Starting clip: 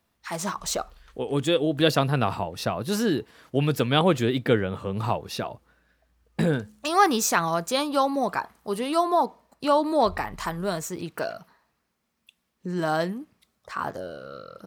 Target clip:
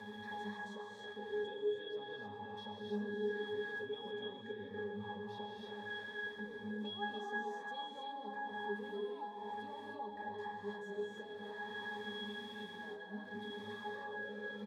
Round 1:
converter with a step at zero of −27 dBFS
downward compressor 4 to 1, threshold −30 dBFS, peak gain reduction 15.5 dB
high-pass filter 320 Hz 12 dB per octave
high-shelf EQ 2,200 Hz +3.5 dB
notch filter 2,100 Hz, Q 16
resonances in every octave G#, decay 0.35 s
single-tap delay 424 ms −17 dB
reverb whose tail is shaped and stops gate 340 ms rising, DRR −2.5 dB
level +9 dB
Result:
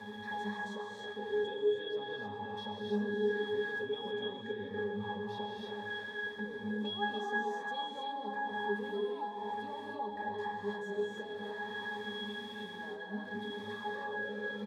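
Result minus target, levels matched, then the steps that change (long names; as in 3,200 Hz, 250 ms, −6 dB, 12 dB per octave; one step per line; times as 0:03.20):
downward compressor: peak gain reduction −6 dB
change: downward compressor 4 to 1, threshold −38 dBFS, peak gain reduction 21.5 dB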